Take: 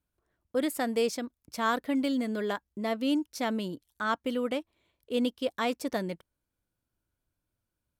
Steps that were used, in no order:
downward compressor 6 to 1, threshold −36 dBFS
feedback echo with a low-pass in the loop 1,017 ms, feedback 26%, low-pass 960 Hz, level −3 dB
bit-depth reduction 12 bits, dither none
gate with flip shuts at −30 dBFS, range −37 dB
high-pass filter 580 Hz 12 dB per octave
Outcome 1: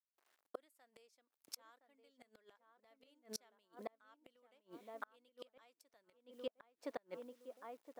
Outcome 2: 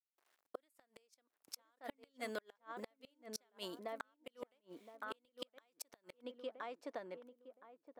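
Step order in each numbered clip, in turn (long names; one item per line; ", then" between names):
feedback echo with a low-pass in the loop, then bit-depth reduction, then high-pass filter, then gate with flip, then downward compressor
bit-depth reduction, then high-pass filter, then downward compressor, then feedback echo with a low-pass in the loop, then gate with flip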